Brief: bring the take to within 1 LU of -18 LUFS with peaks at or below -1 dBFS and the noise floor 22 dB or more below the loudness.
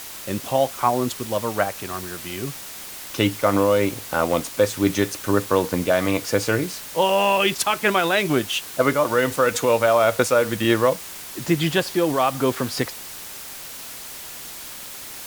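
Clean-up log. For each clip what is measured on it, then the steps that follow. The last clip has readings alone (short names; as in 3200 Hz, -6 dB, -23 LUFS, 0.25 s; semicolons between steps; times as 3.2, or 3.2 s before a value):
noise floor -37 dBFS; noise floor target -44 dBFS; loudness -21.5 LUFS; peak -5.0 dBFS; loudness target -18.0 LUFS
-> noise print and reduce 7 dB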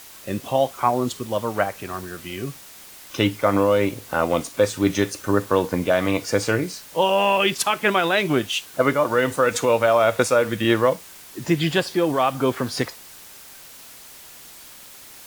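noise floor -44 dBFS; loudness -21.5 LUFS; peak -5.0 dBFS; loudness target -18.0 LUFS
-> gain +3.5 dB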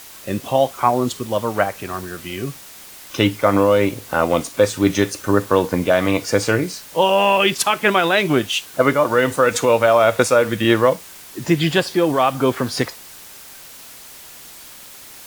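loudness -18.0 LUFS; peak -1.5 dBFS; noise floor -40 dBFS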